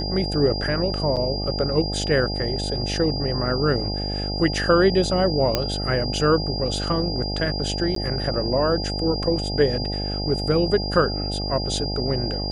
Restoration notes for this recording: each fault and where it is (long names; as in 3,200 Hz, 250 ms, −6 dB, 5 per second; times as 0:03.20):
mains buzz 50 Hz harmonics 17 −28 dBFS
whistle 4,800 Hz −29 dBFS
0:01.16–0:01.17: drop-out 7.4 ms
0:05.55: click −5 dBFS
0:07.95–0:07.96: drop-out 13 ms